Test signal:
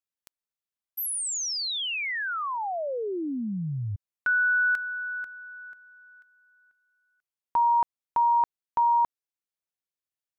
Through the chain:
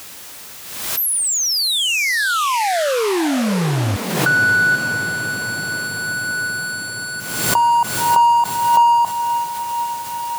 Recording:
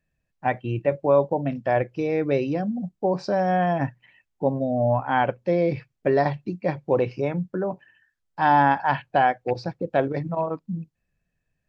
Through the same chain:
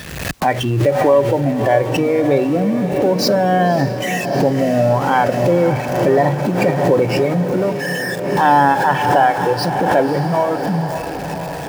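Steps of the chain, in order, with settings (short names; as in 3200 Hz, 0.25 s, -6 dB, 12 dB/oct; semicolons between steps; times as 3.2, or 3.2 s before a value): zero-crossing step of -26 dBFS; in parallel at -2 dB: compressor, threshold -30 dBFS; on the sum: spectral noise reduction 9 dB; HPF 57 Hz; on a send: diffused feedback echo 0.575 s, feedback 74%, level -10 dB; on the sum: backwards sustainer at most 47 dB/s; gain +3.5 dB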